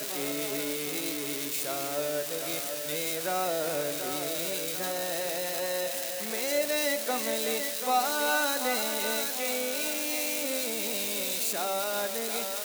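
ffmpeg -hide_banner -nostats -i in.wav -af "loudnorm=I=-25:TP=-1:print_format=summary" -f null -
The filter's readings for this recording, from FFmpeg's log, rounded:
Input Integrated:    -29.0 LUFS
Input True Peak:     -15.0 dBTP
Input LRA:             2.6 LU
Input Threshold:     -39.0 LUFS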